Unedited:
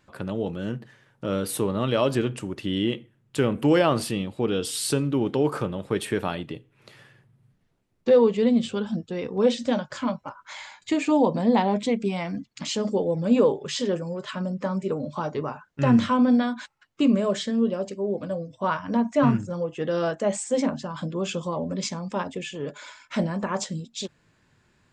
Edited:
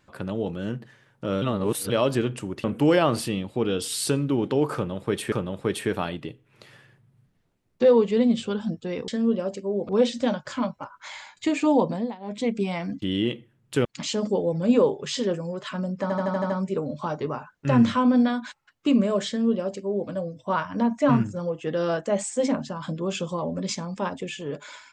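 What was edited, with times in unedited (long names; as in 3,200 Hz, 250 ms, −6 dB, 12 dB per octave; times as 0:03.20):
0:01.42–0:01.90: reverse
0:02.64–0:03.47: move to 0:12.47
0:05.58–0:06.15: repeat, 2 plays
0:11.29–0:11.96: duck −22 dB, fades 0.31 s
0:14.64: stutter 0.08 s, 7 plays
0:17.42–0:18.23: duplicate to 0:09.34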